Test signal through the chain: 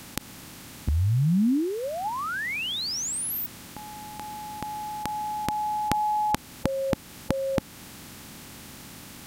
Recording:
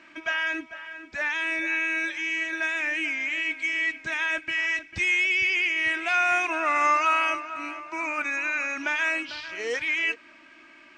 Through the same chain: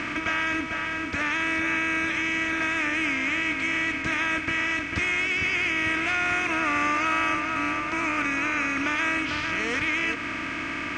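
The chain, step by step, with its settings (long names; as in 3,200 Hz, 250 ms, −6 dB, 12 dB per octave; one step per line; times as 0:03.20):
compressor on every frequency bin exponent 0.4
low shelf with overshoot 350 Hz +9.5 dB, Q 1.5
in parallel at −1 dB: downward compressor, threshold −26 dBFS
on the sum: level −8 dB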